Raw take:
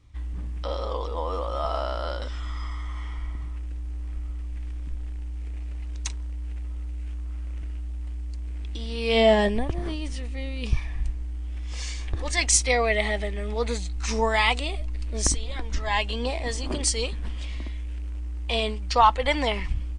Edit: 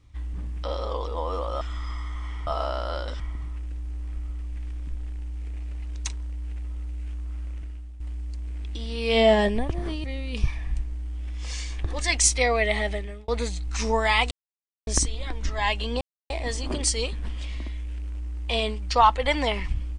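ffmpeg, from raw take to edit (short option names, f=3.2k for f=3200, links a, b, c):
-filter_complex "[0:a]asplit=10[a][b][c][d][e][f][g][h][i][j];[a]atrim=end=1.612[k];[b]atrim=start=2.338:end=3.202[l];[c]atrim=start=1.608:end=2.342[m];[d]atrim=start=3.198:end=8,asetpts=PTS-STARTPTS,afade=t=out:st=4.252:d=0.55:silence=0.298538[n];[e]atrim=start=8:end=10.042,asetpts=PTS-STARTPTS,afade=t=in:d=0.004:c=hsin:silence=0.298538[o];[f]atrim=start=10.328:end=13.57,asetpts=PTS-STARTPTS,afade=t=out:st=2.902:d=0.34[p];[g]atrim=start=13.57:end=14.6,asetpts=PTS-STARTPTS,afade=t=in:d=0.004:c=hsin,afade=t=out:st=1.026:d=0.004:c=hsin[q];[h]atrim=start=14.6:end=15.16,asetpts=PTS-STARTPTS,volume=0[r];[i]atrim=start=15.16:end=16.3,asetpts=PTS-STARTPTS,afade=t=in:d=0.004:c=hsin,afade=t=out:st=1.136:d=0.004:c=hsin,apad=pad_dur=0.29[s];[j]atrim=start=16.3,asetpts=PTS-STARTPTS,afade=t=in:d=0.004:c=hsin[t];[k][l]acrossfade=d=0.004:c1=hsin:c2=hsin[u];[u][m]acrossfade=d=0.004:c1=hsin:c2=hsin[v];[n][o]concat=n=2:v=0:a=1[w];[v][w]acrossfade=d=0.004:c1=hsin:c2=hsin[x];[p][q][r][s][t]concat=n=5:v=0:a=1[y];[x][y]acrossfade=d=0.004:c1=hsin:c2=hsin"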